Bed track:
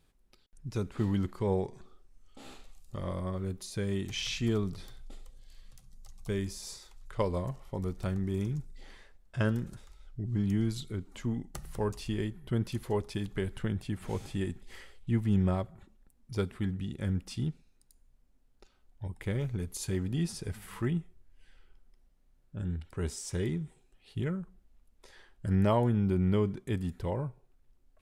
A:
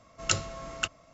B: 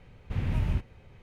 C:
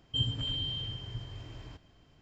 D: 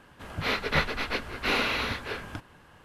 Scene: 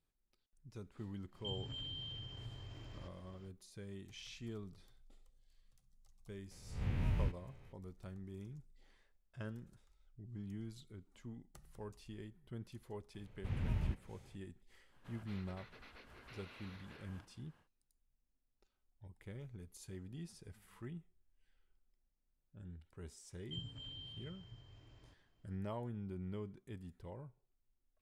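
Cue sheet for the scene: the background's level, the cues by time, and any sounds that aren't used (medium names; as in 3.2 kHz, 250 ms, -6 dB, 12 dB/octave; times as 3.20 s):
bed track -17 dB
1.31 s: add C -1.5 dB, fades 0.05 s + compression 2:1, threshold -49 dBFS
6.51 s: add B -9 dB + reverse spectral sustain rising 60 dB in 0.57 s
13.14 s: add B -9.5 dB
14.85 s: add D -16.5 dB, fades 0.10 s + compression 8:1, threshold -37 dBFS
23.37 s: add C -16 dB
not used: A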